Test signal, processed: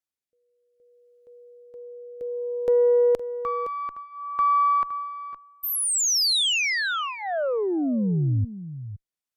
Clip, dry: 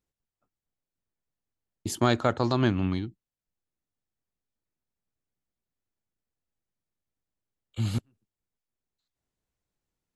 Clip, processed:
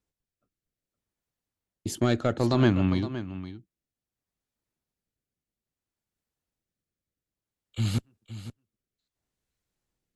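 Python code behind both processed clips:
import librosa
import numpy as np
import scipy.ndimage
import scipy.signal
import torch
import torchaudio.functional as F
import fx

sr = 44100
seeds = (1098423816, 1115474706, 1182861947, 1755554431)

p1 = fx.cheby_harmonics(x, sr, harmonics=(3, 4, 6, 8), levels_db=(-21, -31, -41, -41), full_scale_db=-8.5)
p2 = 10.0 ** (-15.0 / 20.0) * np.tanh(p1 / 10.0 ** (-15.0 / 20.0))
p3 = fx.rotary(p2, sr, hz=0.6)
p4 = p3 + fx.echo_single(p3, sr, ms=515, db=-13.0, dry=0)
y = F.gain(torch.from_numpy(p4), 6.5).numpy()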